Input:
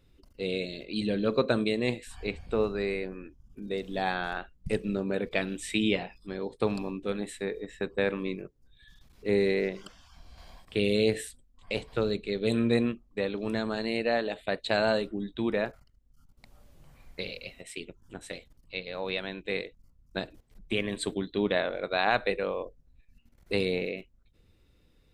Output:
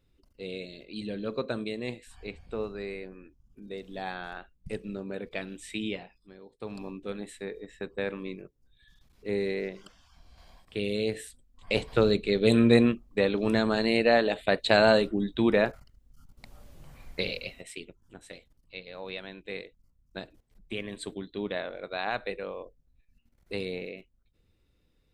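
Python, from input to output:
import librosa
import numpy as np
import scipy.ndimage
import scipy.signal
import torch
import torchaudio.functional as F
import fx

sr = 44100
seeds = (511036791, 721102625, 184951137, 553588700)

y = fx.gain(x, sr, db=fx.line((5.86, -6.5), (6.51, -17.0), (6.84, -4.5), (11.2, -4.5), (11.79, 5.5), (17.35, 5.5), (18.02, -6.0)))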